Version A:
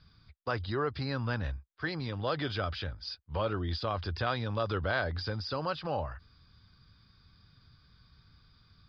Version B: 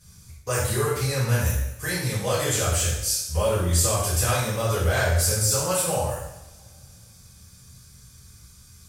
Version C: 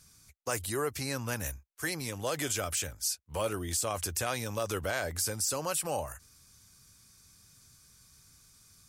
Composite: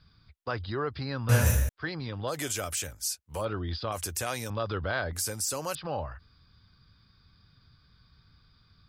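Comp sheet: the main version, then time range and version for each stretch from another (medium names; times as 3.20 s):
A
1.29–1.69 s: from B
2.32–3.41 s: from C, crossfade 0.10 s
3.92–4.50 s: from C
5.13–5.75 s: from C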